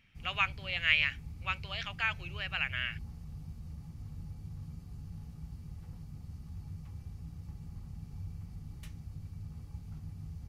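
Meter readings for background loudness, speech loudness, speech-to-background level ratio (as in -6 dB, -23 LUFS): -46.5 LUFS, -32.5 LUFS, 14.0 dB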